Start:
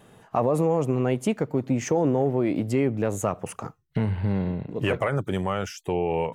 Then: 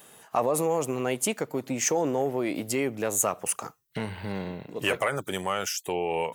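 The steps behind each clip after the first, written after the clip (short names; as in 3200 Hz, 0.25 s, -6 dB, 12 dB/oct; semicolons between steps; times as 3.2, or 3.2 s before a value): RIAA curve recording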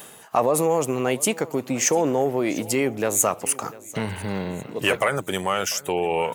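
reverse; upward compressor, threshold -31 dBFS; reverse; feedback echo 0.696 s, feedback 39%, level -20 dB; gain +5 dB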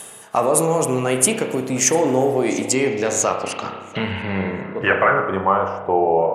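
spring tank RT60 1.1 s, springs 31 ms, chirp 25 ms, DRR 3.5 dB; low-pass sweep 10000 Hz -> 680 Hz, 2.27–6.16; gain +1.5 dB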